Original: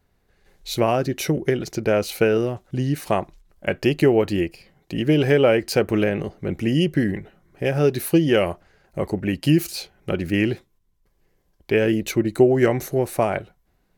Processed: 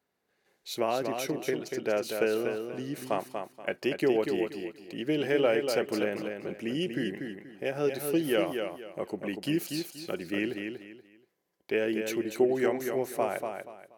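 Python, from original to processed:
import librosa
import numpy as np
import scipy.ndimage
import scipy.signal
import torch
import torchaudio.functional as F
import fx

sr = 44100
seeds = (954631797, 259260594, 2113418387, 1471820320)

p1 = scipy.signal.sosfilt(scipy.signal.butter(2, 260.0, 'highpass', fs=sr, output='sos'), x)
p2 = p1 + fx.echo_feedback(p1, sr, ms=239, feedback_pct=27, wet_db=-6.0, dry=0)
y = p2 * 10.0 ** (-8.5 / 20.0)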